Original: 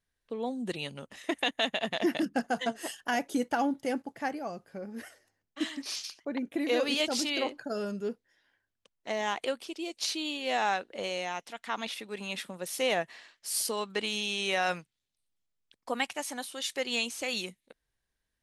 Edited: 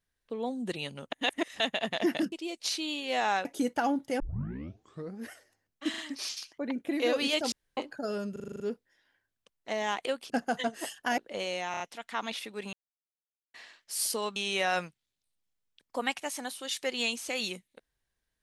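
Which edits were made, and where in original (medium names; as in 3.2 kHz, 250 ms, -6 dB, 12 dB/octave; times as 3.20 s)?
1.12–1.60 s: reverse
2.32–3.20 s: swap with 9.69–10.82 s
3.95 s: tape start 0.99 s
5.65 s: stutter 0.04 s, 3 plays
7.19–7.44 s: room tone
7.99 s: stutter 0.04 s, 8 plays
11.35 s: stutter 0.03 s, 4 plays
12.28–13.09 s: mute
13.91–14.29 s: delete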